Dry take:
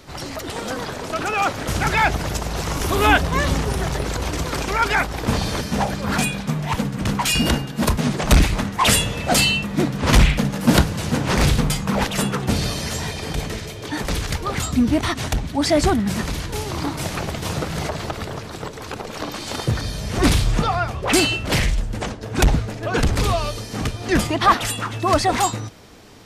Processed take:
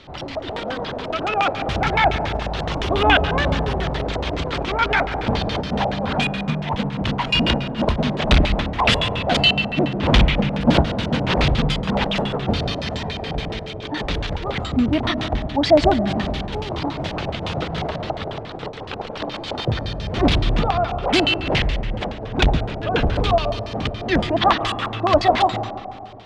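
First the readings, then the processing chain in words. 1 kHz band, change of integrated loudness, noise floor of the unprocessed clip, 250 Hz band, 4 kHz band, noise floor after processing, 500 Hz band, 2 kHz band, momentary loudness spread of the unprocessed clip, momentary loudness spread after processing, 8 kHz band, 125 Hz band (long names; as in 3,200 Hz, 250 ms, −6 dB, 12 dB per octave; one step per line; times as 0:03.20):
+1.0 dB, 0.0 dB, −34 dBFS, −0.5 dB, +1.5 dB, −32 dBFS, +3.0 dB, 0.0 dB, 11 LU, 11 LU, −15.5 dB, −1.0 dB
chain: comb and all-pass reverb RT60 2.1 s, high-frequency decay 0.45×, pre-delay 80 ms, DRR 9.5 dB
auto-filter low-pass square 7.1 Hz 720–3,400 Hz
level −1.5 dB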